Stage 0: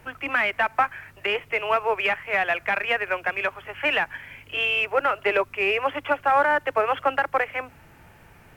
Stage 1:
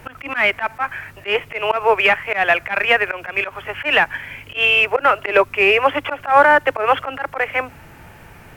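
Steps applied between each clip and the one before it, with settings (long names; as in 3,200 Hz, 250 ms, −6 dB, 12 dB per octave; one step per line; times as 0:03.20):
volume swells 111 ms
level +9 dB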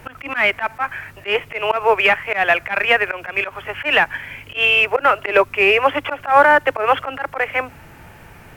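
floating-point word with a short mantissa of 6 bits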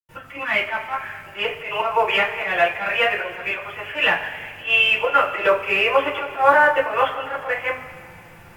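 convolution reverb, pre-delay 89 ms
level −11 dB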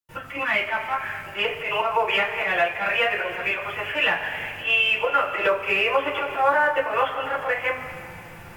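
downward compressor 2 to 1, threshold −26 dBFS, peak gain reduction 9.5 dB
level +3 dB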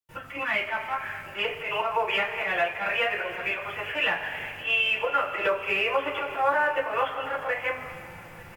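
single-tap delay 888 ms −22 dB
level −4 dB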